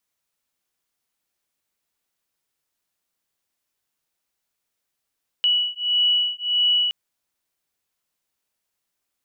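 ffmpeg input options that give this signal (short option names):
-f lavfi -i "aevalsrc='0.0891*(sin(2*PI*2940*t)+sin(2*PI*2941.6*t))':d=1.47:s=44100"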